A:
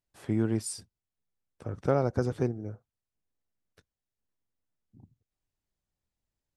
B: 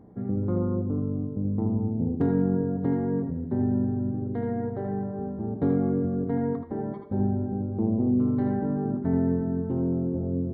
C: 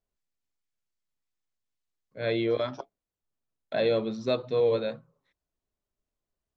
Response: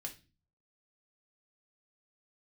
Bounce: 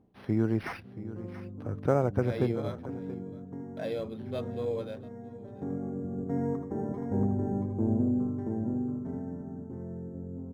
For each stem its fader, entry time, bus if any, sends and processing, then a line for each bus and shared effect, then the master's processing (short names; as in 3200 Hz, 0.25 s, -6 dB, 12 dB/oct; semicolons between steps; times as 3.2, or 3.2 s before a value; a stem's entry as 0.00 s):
+0.5 dB, 0.00 s, no send, echo send -15 dB, dry
5.94 s -11 dB -> 6.51 s -3 dB -> 8.01 s -3 dB -> 8.56 s -14 dB, 0.00 s, no send, echo send -4.5 dB, auto duck -18 dB, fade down 0.30 s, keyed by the first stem
-9.0 dB, 0.05 s, no send, echo send -21.5 dB, dry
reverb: off
echo: echo 0.679 s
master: decimation joined by straight lines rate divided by 6×